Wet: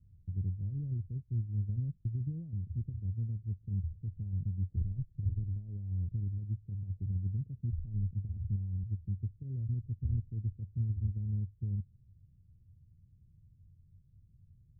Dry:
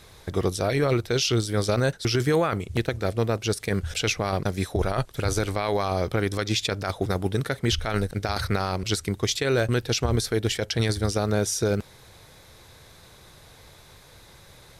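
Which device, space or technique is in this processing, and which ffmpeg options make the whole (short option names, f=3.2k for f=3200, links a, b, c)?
the neighbour's flat through the wall: -af "lowpass=f=180:w=0.5412,lowpass=f=180:w=1.3066,equalizer=f=92:t=o:w=0.46:g=7,volume=-9dB"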